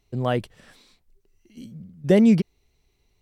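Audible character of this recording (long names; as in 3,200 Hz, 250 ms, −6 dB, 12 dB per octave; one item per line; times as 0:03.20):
background noise floor −69 dBFS
spectral slope −7.0 dB per octave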